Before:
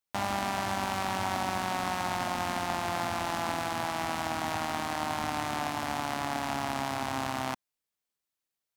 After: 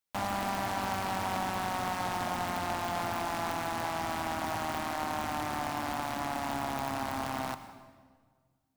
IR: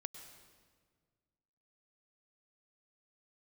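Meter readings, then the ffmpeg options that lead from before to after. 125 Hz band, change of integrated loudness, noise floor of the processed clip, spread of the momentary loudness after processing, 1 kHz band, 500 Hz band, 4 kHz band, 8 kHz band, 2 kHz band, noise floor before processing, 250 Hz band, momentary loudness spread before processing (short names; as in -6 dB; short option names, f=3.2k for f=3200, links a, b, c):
-1.5 dB, -1.5 dB, -73 dBFS, 2 LU, -1.5 dB, -1.0 dB, -3.5 dB, -3.0 dB, -2.5 dB, under -85 dBFS, -1.5 dB, 2 LU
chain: -filter_complex "[0:a]aeval=exprs='0.0708*(abs(mod(val(0)/0.0708+3,4)-2)-1)':c=same,asplit=2[a][b];[1:a]atrim=start_sample=2205[c];[b][c]afir=irnorm=-1:irlink=0,volume=8dB[d];[a][d]amix=inputs=2:normalize=0,volume=-8.5dB"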